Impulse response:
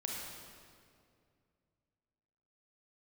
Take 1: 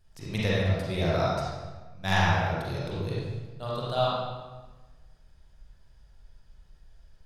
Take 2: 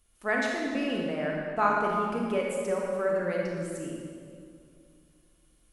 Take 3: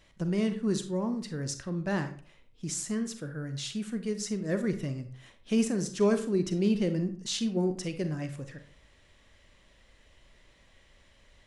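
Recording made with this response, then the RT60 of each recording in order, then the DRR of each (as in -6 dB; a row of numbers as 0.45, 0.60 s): 2; 1.3, 2.3, 0.45 s; -6.5, -2.5, 8.5 dB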